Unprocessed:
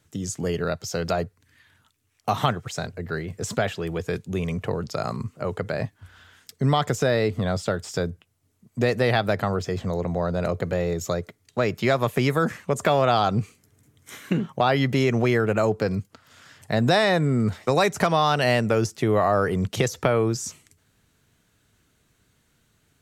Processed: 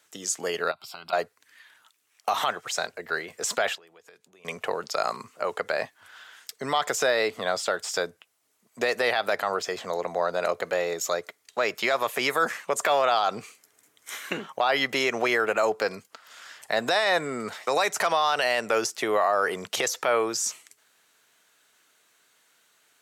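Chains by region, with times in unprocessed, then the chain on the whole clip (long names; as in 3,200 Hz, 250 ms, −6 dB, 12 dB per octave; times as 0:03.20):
0:00.71–0:01.13: high-shelf EQ 8,800 Hz −8.5 dB + downward compressor 4 to 1, threshold −31 dBFS + phaser with its sweep stopped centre 1,800 Hz, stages 6
0:03.75–0:04.45: downward compressor 12 to 1, threshold −39 dBFS + noise gate −41 dBFS, range −8 dB
whole clip: high-pass filter 650 Hz 12 dB per octave; brickwall limiter −18 dBFS; level +5 dB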